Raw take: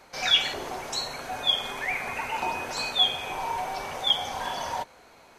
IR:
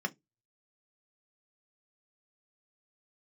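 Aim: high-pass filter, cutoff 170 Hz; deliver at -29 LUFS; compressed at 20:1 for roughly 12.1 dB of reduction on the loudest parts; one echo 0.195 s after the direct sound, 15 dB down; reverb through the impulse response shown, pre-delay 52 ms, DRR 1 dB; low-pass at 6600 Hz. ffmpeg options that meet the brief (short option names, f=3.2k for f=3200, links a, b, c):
-filter_complex "[0:a]highpass=170,lowpass=6.6k,acompressor=threshold=-29dB:ratio=20,aecho=1:1:195:0.178,asplit=2[a][b];[1:a]atrim=start_sample=2205,adelay=52[c];[b][c]afir=irnorm=-1:irlink=0,volume=-5.5dB[d];[a][d]amix=inputs=2:normalize=0,volume=2dB"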